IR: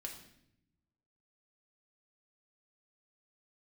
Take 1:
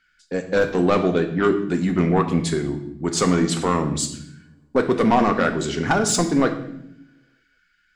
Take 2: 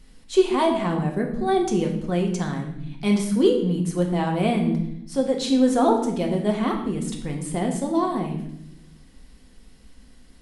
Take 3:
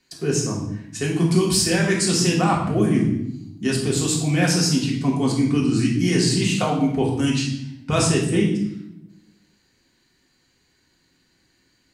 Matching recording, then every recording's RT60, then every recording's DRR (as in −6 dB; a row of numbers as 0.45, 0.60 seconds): 2; 0.75, 0.75, 0.75 seconds; 5.5, 1.0, −3.0 decibels